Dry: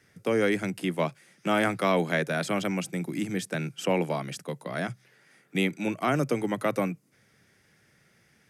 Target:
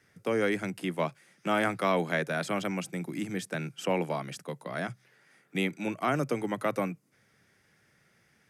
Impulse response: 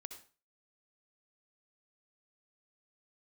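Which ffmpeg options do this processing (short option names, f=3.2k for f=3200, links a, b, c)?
-af "equalizer=f=1.1k:t=o:w=1.7:g=3,volume=-4dB"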